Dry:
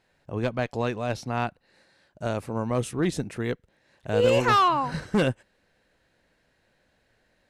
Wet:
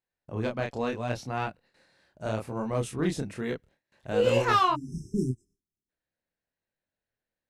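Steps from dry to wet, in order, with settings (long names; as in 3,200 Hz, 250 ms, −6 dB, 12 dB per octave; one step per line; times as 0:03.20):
chorus effect 0.73 Hz, depth 8 ms
noise gate with hold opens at −56 dBFS
time-frequency box erased 0:04.75–0:05.89, 410–5,100 Hz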